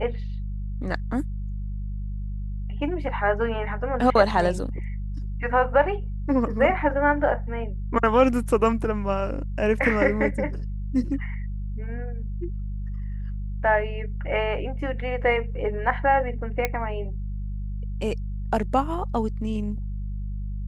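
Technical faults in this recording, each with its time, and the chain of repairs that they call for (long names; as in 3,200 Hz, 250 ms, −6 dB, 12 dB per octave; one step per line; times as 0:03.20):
mains hum 50 Hz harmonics 4 −30 dBFS
0:16.65: click −9 dBFS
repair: click removal
hum removal 50 Hz, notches 4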